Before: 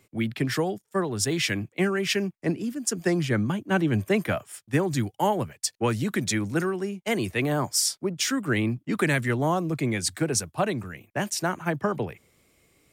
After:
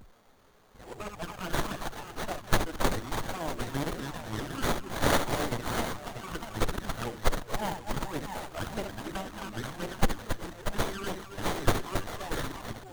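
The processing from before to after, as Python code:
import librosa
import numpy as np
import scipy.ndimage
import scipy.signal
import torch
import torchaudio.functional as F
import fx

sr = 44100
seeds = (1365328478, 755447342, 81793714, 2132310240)

p1 = np.flip(x).copy()
p2 = scipy.signal.sosfilt(scipy.signal.butter(2, 100.0, 'highpass', fs=sr, output='sos'), p1)
p3 = fx.low_shelf(p2, sr, hz=460.0, db=-10.5)
p4 = p3 + fx.echo_multitap(p3, sr, ms=(68, 274, 391, 636, 754), db=(-8.0, -7.5, -16.5, -8.5, -12.0), dry=0)
p5 = p4 + 10.0 ** (-51.0 / 20.0) * np.sin(2.0 * np.pi * 7900.0 * np.arange(len(p4)) / sr)
p6 = fx.env_flanger(p5, sr, rest_ms=10.0, full_db=-23.0)
p7 = fx.riaa(p6, sr, side='recording')
p8 = fx.running_max(p7, sr, window=17)
y = p8 * 10.0 ** (-2.5 / 20.0)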